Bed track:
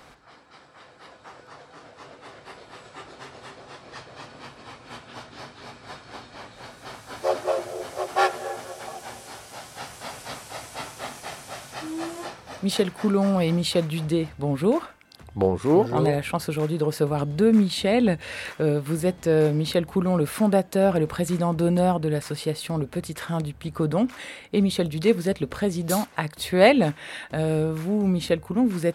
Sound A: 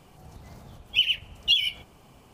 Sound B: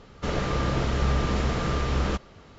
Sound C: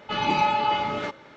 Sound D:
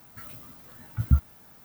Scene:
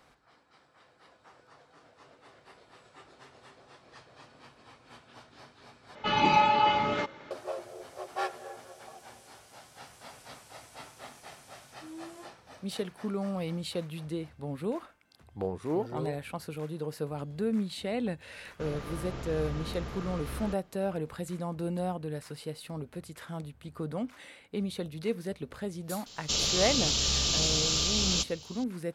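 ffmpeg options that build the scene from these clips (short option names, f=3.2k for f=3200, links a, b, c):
-filter_complex "[2:a]asplit=2[a][b];[0:a]volume=-12dB[c];[b]aexciter=amount=9.2:drive=9.3:freq=2.9k[d];[c]asplit=2[e][f];[e]atrim=end=5.954[g];[3:a]atrim=end=1.36,asetpts=PTS-STARTPTS,volume=-0.5dB[h];[f]atrim=start=7.306[i];[a]atrim=end=2.58,asetpts=PTS-STARTPTS,volume=-13.5dB,afade=t=in:d=0.004:c=hsin,afade=t=out:st=2.576:d=0.004:c=hsin,adelay=18370[j];[d]atrim=end=2.58,asetpts=PTS-STARTPTS,volume=-10.5dB,afade=t=in:d=0.004:c=hsin,afade=t=out:st=2.576:d=0.004:c=hsin,adelay=26060[k];[g][h]acrossfade=d=0.004:c1=hsin:c2=hsin[l];[l][i]acrossfade=d=0.004:c1=hsin:c2=hsin[m];[m][j][k]amix=inputs=3:normalize=0"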